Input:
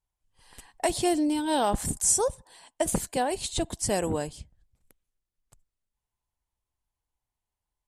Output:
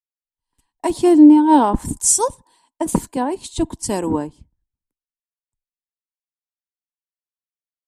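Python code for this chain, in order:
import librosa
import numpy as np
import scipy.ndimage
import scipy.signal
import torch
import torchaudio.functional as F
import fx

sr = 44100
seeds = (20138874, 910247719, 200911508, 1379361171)

y = fx.small_body(x, sr, hz=(280.0, 940.0), ring_ms=20, db=15)
y = fx.band_widen(y, sr, depth_pct=100)
y = y * 10.0 ** (-1.0 / 20.0)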